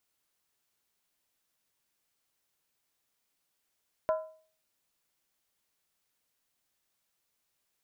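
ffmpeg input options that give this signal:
-f lavfi -i "aevalsrc='0.075*pow(10,-3*t/0.46)*sin(2*PI*633*t)+0.0316*pow(10,-3*t/0.364)*sin(2*PI*1009*t)+0.0133*pow(10,-3*t/0.315)*sin(2*PI*1352.1*t)+0.00562*pow(10,-3*t/0.304)*sin(2*PI*1453.4*t)+0.00237*pow(10,-3*t/0.282)*sin(2*PI*1679.3*t)':d=0.63:s=44100"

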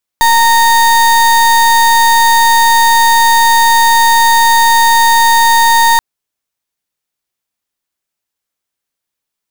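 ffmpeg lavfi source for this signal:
-f lavfi -i "aevalsrc='0.422*(2*lt(mod(924*t,1),0.34)-1)':d=5.78:s=44100"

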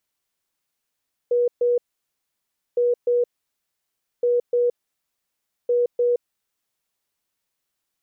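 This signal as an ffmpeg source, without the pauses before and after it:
-f lavfi -i "aevalsrc='0.158*sin(2*PI*484*t)*clip(min(mod(mod(t,1.46),0.3),0.17-mod(mod(t,1.46),0.3))/0.005,0,1)*lt(mod(t,1.46),0.6)':d=5.84:s=44100"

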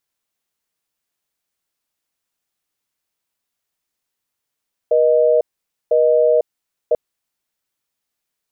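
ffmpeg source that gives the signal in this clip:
-f lavfi -i "aevalsrc='0.211*(sin(2*PI*480*t)+sin(2*PI*620*t))*clip(min(mod(t,1),0.5-mod(t,1))/0.005,0,1)':d=2.04:s=44100"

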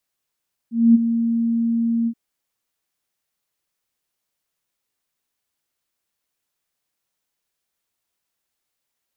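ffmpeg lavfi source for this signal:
-f lavfi -i "aevalsrc='0.447*sin(2*PI*231*t)':d=1.427:s=44100,afade=t=in:d=0.237,afade=t=out:st=0.237:d=0.022:silence=0.316,afade=t=out:st=1.36:d=0.067"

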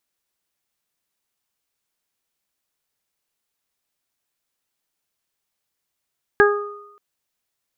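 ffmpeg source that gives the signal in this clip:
-f lavfi -i "aevalsrc='0.316*pow(10,-3*t/0.75)*sin(2*PI*411*t)+0.112*pow(10,-3*t/0.46)*sin(2*PI*822*t)+0.133*pow(10,-3*t/1.05)*sin(2*PI*1233*t)+0.299*pow(10,-3*t/0.31)*sin(2*PI*1644*t)':d=0.58:s=44100"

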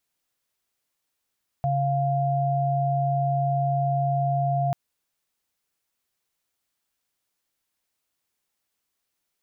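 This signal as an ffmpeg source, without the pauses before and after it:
-f lavfi -i "aevalsrc='0.0668*(sin(2*PI*138.59*t)+sin(2*PI*698.46*t))':d=3.09:s=44100"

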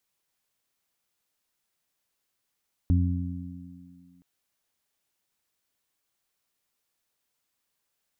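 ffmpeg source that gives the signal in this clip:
-f lavfi -i "aevalsrc='0.133*pow(10,-3*t/1.51)*sin(2*PI*88.6*t)+0.0473*pow(10,-3*t/2.48)*sin(2*PI*177.2*t)+0.0447*pow(10,-3*t/2.45)*sin(2*PI*265.8*t)':d=1.32:s=44100"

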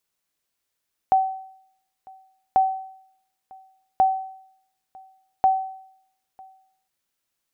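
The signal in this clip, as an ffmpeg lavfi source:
-f lavfi -i "aevalsrc='0.282*(sin(2*PI*763*mod(t,1.44))*exp(-6.91*mod(t,1.44)/0.69)+0.0447*sin(2*PI*763*max(mod(t,1.44)-0.95,0))*exp(-6.91*max(mod(t,1.44)-0.95,0)/0.69))':d=5.76:s=44100"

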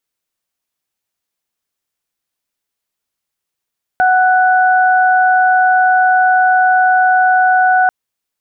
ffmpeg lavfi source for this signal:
-f lavfi -i "aevalsrc='0.355*sin(2*PI*742*t)+0.224*sin(2*PI*1484*t)':d=3.89:s=44100"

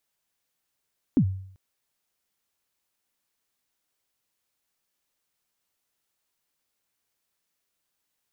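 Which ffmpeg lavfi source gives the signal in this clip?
-f lavfi -i "aevalsrc='0.211*pow(10,-3*t/0.62)*sin(2*PI*(310*0.076/log(95/310)*(exp(log(95/310)*min(t,0.076)/0.076)-1)+95*max(t-0.076,0)))':d=0.39:s=44100"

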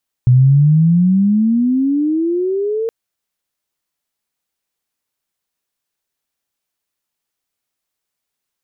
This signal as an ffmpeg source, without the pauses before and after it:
-f lavfi -i "aevalsrc='pow(10,(-5.5-10.5*t/2.62)/20)*sin(2*PI*122*2.62/(23*log(2)/12)*(exp(23*log(2)/12*t/2.62)-1))':d=2.62:s=44100"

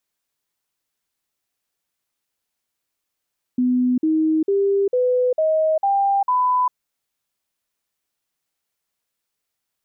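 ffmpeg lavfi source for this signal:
-f lavfi -i "aevalsrc='0.178*clip(min(mod(t,0.45),0.4-mod(t,0.45))/0.005,0,1)*sin(2*PI*250*pow(2,floor(t/0.45)/3)*mod(t,0.45))':d=3.15:s=44100"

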